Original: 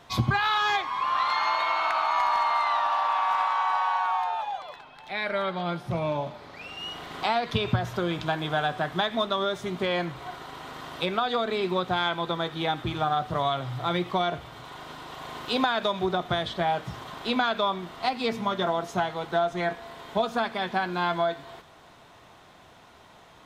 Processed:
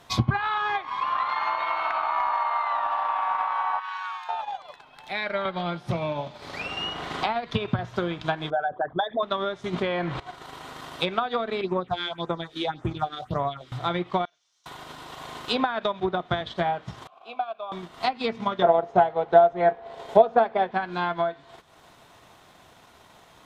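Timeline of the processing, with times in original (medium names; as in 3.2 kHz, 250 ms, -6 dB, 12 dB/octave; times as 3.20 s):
2.32–2.73 s: high-pass 370 Hz 24 dB/octave
3.79–4.29 s: inverse Chebyshev high-pass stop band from 450 Hz, stop band 50 dB
5.45–7.79 s: three bands compressed up and down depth 70%
8.50–9.23 s: resonances exaggerated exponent 3
9.73–10.20 s: level flattener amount 70%
11.61–13.72 s: phase shifter stages 4, 1.8 Hz, lowest notch 120–4200 Hz
14.25–14.66 s: band-pass filter 5.9 kHz, Q 5
16.00–16.41 s: three bands expanded up and down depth 40%
17.07–17.72 s: vowel filter a
18.62–20.71 s: high-order bell 570 Hz +9 dB 1.3 oct
whole clip: low-pass that closes with the level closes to 2.1 kHz, closed at -21 dBFS; treble shelf 7.9 kHz +9.5 dB; transient shaper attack +4 dB, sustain -7 dB; trim -1 dB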